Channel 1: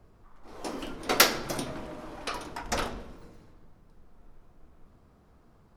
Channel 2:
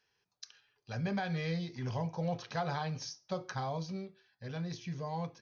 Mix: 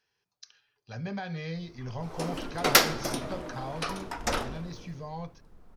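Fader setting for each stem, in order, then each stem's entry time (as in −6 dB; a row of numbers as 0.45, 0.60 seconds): +1.0, −1.0 decibels; 1.55, 0.00 seconds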